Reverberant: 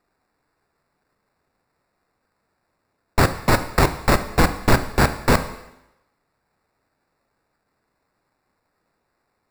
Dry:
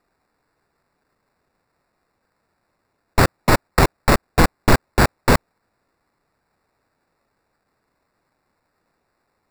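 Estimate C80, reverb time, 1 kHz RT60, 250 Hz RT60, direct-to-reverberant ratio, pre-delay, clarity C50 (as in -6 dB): 14.5 dB, 0.90 s, 0.90 s, 0.80 s, 9.5 dB, 13 ms, 12.5 dB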